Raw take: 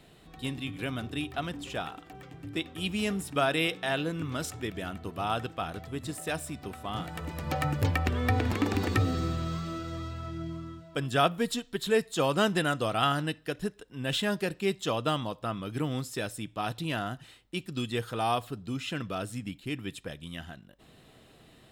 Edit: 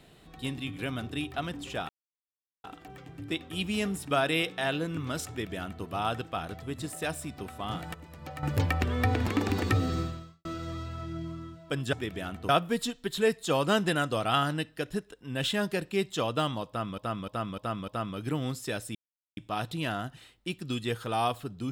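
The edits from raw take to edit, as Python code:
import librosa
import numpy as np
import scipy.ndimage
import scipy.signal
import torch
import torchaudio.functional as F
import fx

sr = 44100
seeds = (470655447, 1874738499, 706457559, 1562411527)

y = fx.edit(x, sr, fx.insert_silence(at_s=1.89, length_s=0.75),
    fx.duplicate(start_s=4.54, length_s=0.56, to_s=11.18),
    fx.clip_gain(start_s=7.19, length_s=0.49, db=-11.0),
    fx.fade_out_span(start_s=9.25, length_s=0.45, curve='qua'),
    fx.repeat(start_s=15.37, length_s=0.3, count=5),
    fx.insert_silence(at_s=16.44, length_s=0.42), tone=tone)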